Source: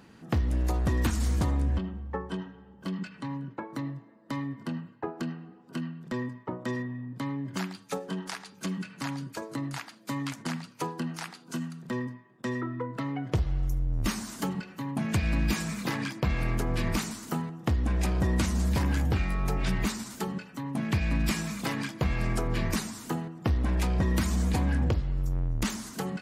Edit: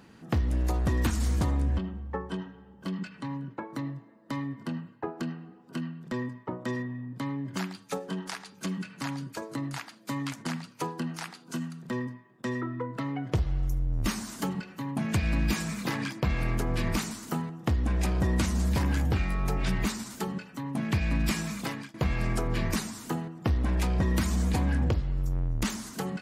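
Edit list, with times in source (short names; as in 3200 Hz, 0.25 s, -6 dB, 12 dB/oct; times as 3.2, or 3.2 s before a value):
21.58–21.94 fade out, to -19 dB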